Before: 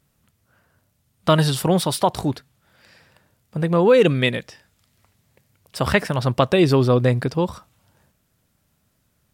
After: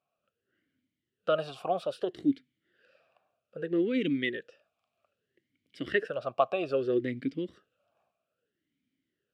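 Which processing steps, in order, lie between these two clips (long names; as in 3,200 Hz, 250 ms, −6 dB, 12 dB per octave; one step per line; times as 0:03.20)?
formant filter swept between two vowels a-i 0.62 Hz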